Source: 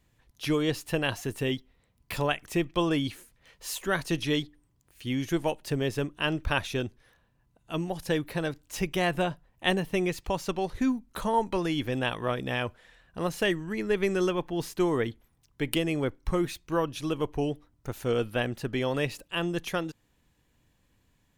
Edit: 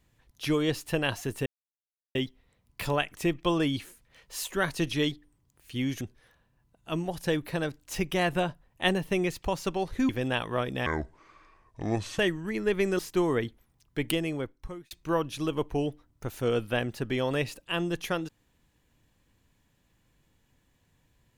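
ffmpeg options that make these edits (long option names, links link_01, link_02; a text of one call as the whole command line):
ffmpeg -i in.wav -filter_complex "[0:a]asplit=8[link_01][link_02][link_03][link_04][link_05][link_06][link_07][link_08];[link_01]atrim=end=1.46,asetpts=PTS-STARTPTS,afade=type=out:start_time=1.456:duration=0.004:curve=hsin,apad=pad_dur=0.69[link_09];[link_02]atrim=start=1.46:end=5.322,asetpts=PTS-STARTPTS,afade=type=in:duration=0.004:curve=hsin[link_10];[link_03]atrim=start=6.828:end=10.912[link_11];[link_04]atrim=start=11.798:end=12.574[link_12];[link_05]atrim=start=12.57:end=13.42,asetpts=PTS-STARTPTS,asetrate=28224,aresample=44100,atrim=end_sample=58570,asetpts=PTS-STARTPTS[link_13];[link_06]atrim=start=13.416:end=14.222[link_14];[link_07]atrim=start=14.618:end=16.54,asetpts=PTS-STARTPTS,afade=type=out:start_time=1.072:duration=0.85[link_15];[link_08]atrim=start=16.54,asetpts=PTS-STARTPTS,afade=type=in:duration=0.004:curve=hsin[link_16];[link_09][link_10]concat=n=2:v=0:a=1[link_17];[link_17][link_11]acrossfade=duration=0.004:curve1=hsin:curve2=hsin[link_18];[link_18][link_12]acrossfade=duration=0.004:curve1=hsin:curve2=hsin[link_19];[link_19][link_13]acrossfade=duration=0.004:curve1=hsin:curve2=hsin[link_20];[link_20][link_14]acrossfade=duration=0.004:curve1=hsin:curve2=hsin[link_21];[link_15][link_16]concat=n=2:v=0:a=1[link_22];[link_21][link_22]acrossfade=duration=0.004:curve1=hsin:curve2=hsin" out.wav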